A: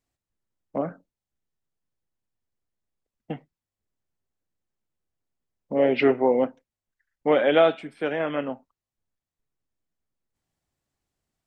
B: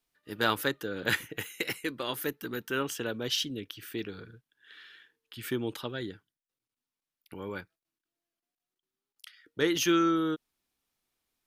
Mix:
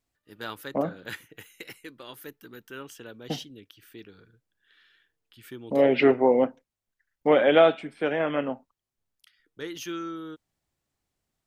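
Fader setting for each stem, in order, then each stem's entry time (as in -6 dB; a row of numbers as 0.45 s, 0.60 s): +0.5 dB, -9.5 dB; 0.00 s, 0.00 s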